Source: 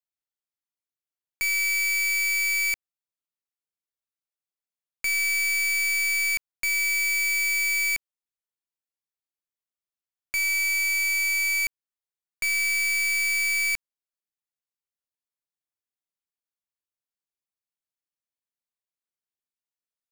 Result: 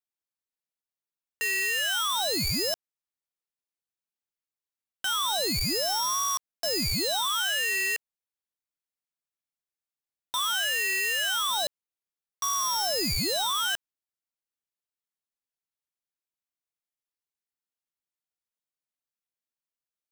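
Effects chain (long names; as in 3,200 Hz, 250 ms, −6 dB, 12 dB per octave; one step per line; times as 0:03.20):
ring modulator whose carrier an LFO sweeps 1,900 Hz, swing 80%, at 0.32 Hz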